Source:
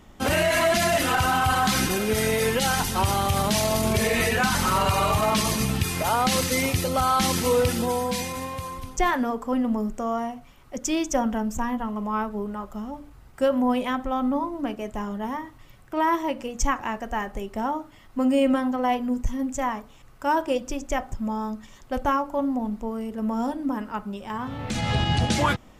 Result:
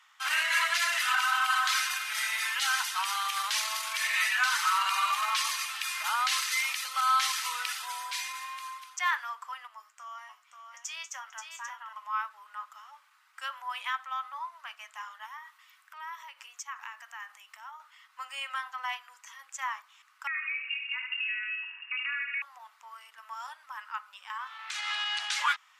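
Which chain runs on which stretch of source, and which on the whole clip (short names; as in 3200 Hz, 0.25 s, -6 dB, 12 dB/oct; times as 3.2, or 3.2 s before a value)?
9.67–11.93 resonator 110 Hz, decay 0.17 s, mix 70% + echo 0.532 s -6.5 dB
15.26–17.8 high shelf 11000 Hz +7.5 dB + compressor 3:1, threshold -34 dBFS
20.27–22.42 compressor, threshold -30 dBFS + feedback echo 75 ms, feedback 56%, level -6.5 dB + inverted band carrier 2800 Hz
whole clip: steep high-pass 1100 Hz 36 dB/oct; high shelf 7600 Hz -10.5 dB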